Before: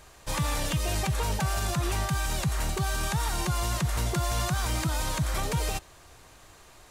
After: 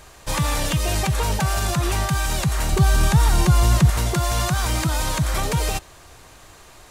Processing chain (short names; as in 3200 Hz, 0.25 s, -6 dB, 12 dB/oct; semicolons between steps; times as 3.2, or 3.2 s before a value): 2.72–3.9 low shelf 330 Hz +8 dB; gain +6.5 dB